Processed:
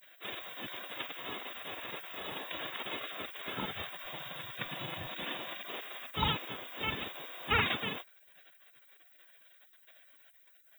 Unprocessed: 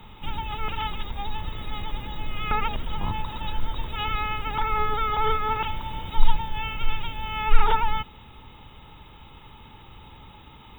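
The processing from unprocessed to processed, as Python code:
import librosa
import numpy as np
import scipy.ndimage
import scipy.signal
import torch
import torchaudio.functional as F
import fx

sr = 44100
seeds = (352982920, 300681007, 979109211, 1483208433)

y = fx.spec_gate(x, sr, threshold_db=-30, keep='weak')
y = fx.low_shelf_res(y, sr, hz=170.0, db=12.0, q=1.5, at=(3.72, 5.1))
y = y * 10.0 ** (5.0 / 20.0)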